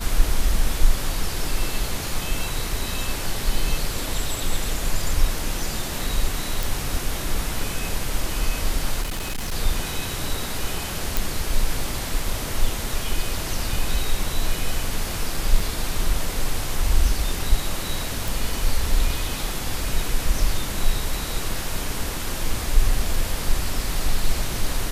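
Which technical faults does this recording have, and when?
6.63 pop
9.02–9.53 clipped -23.5 dBFS
11.17 pop
15.6 gap 3.6 ms
18.28 pop

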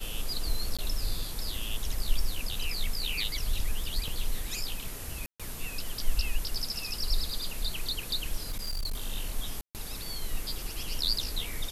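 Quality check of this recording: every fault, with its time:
0.77–0.79 gap 16 ms
4.08 gap 2.8 ms
5.26–5.4 gap 0.136 s
8.49–9.02 clipped -28.5 dBFS
9.61–9.75 gap 0.138 s

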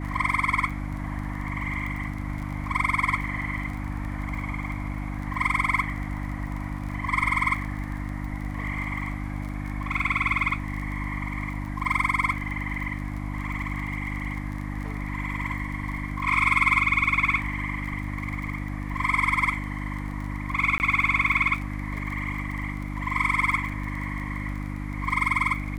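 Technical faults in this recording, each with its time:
crackle 29/s -33 dBFS
hum 50 Hz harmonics 6 -32 dBFS
20.78–20.8 gap 19 ms

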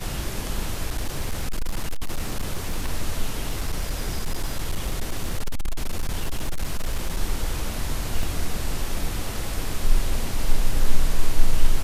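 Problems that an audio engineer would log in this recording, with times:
0.9–2.88 clipped -20 dBFS
3.47–7.17 clipped -19.5 dBFS
8.23 gap 2.2 ms

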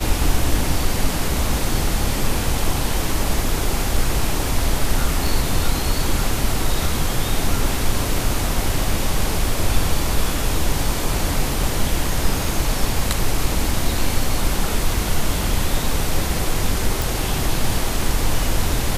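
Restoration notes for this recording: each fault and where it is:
5.27 gap 3.2 ms
17.02 pop

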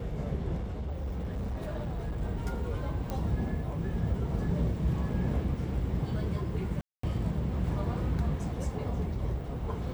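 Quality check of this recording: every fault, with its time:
0.56–2.22 clipped -30.5 dBFS
3.1 pop -21 dBFS
6.81–7.03 gap 0.224 s

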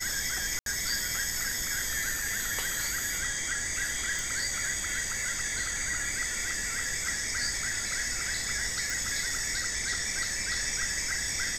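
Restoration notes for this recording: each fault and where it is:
0.59–0.66 gap 72 ms
4.19 pop
8.9 pop

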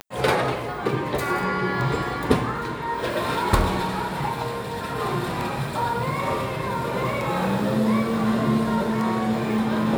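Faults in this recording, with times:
tick 33 1/3 rpm -16 dBFS

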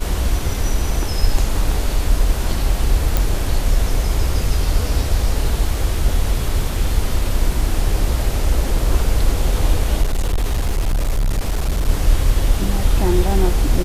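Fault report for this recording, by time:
3.17 pop
10.02–11.89 clipped -14 dBFS

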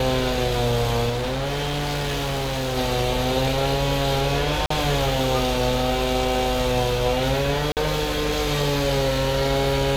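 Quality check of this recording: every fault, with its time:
1.09–2.78 clipped -22.5 dBFS
4.66–4.7 gap 44 ms
7.72–7.77 gap 48 ms

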